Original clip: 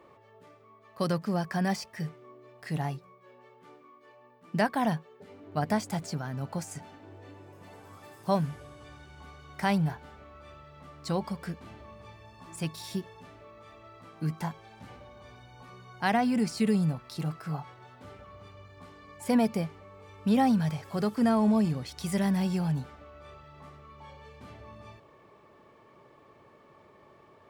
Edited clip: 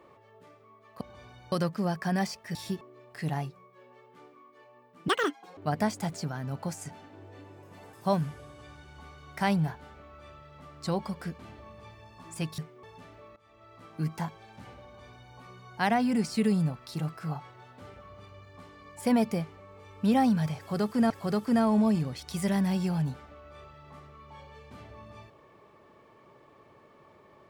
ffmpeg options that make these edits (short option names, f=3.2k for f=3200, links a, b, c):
-filter_complex "[0:a]asplit=12[a][b][c][d][e][f][g][h][i][j][k][l];[a]atrim=end=1.012[m];[b]atrim=start=15.078:end=15.592[n];[c]atrim=start=1.008:end=2.042[o];[d]atrim=start=12.798:end=13.062[p];[e]atrim=start=2.288:end=4.564[q];[f]atrim=start=4.56:end=5.47,asetpts=PTS-STARTPTS,asetrate=81585,aresample=44100,atrim=end_sample=21692,asetpts=PTS-STARTPTS[r];[g]atrim=start=5.466:end=7.832[s];[h]atrim=start=8.148:end=12.802[t];[i]atrim=start=2.038:end=2.292[u];[j]atrim=start=13.058:end=13.59,asetpts=PTS-STARTPTS,afade=t=out:st=0.528:d=0.004:c=hsin:silence=0.149624[v];[k]atrim=start=13.59:end=21.332,asetpts=PTS-STARTPTS,afade=t=in:d=0.49:silence=0.149624[w];[l]atrim=start=20.798[x];[m][n]acrossfade=d=0.004:c1=hsin:c2=hsin[y];[y][o]acrossfade=d=0.004:c1=hsin:c2=hsin[z];[z][p]acrossfade=d=0.004:c1=hsin:c2=hsin[aa];[aa][q]acrossfade=d=0.004:c1=hsin:c2=hsin[ab];[ab][r]acrossfade=d=0.004:c1=hsin:c2=hsin[ac];[ac][s]acrossfade=d=0.004:c1=hsin:c2=hsin[ad];[ad][t]acrossfade=d=0.004:c1=hsin:c2=hsin[ae];[ae][u]acrossfade=d=0.004:c1=hsin:c2=hsin[af];[v][w]concat=n=2:v=0:a=1[ag];[af][ag]acrossfade=d=0.004:c1=hsin:c2=hsin[ah];[ah][x]acrossfade=d=0.004:c1=hsin:c2=hsin"